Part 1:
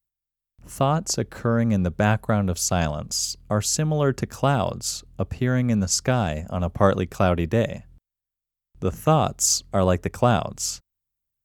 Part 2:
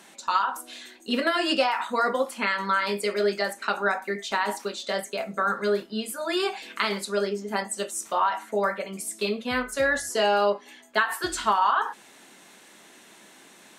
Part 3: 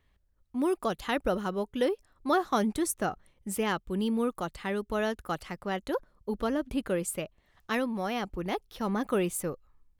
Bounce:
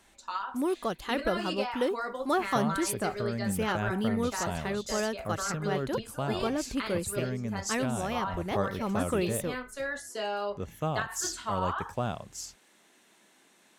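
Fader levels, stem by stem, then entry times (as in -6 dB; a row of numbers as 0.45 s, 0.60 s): -13.0 dB, -11.0 dB, -1.5 dB; 1.75 s, 0.00 s, 0.00 s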